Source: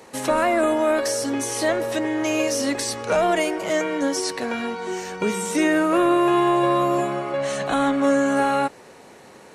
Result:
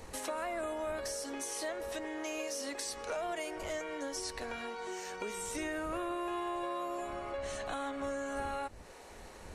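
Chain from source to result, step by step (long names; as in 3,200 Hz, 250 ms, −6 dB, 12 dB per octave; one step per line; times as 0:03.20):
wind on the microphone 83 Hz −26 dBFS
bass and treble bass −14 dB, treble +2 dB
downward compressor 2.5 to 1, threshold −35 dBFS, peak gain reduction 12 dB
parametric band 130 Hz −8 dB 0.39 octaves
level −5.5 dB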